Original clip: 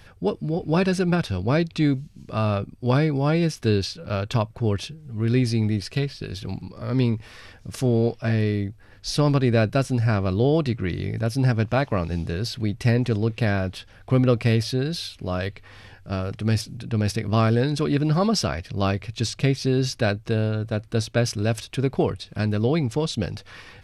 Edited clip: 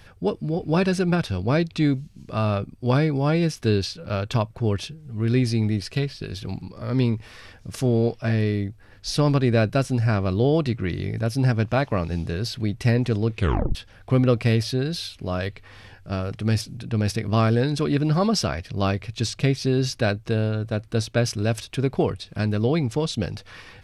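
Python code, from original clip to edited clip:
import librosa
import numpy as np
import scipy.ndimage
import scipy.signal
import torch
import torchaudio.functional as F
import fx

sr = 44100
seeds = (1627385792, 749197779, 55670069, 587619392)

y = fx.edit(x, sr, fx.tape_stop(start_s=13.36, length_s=0.39), tone=tone)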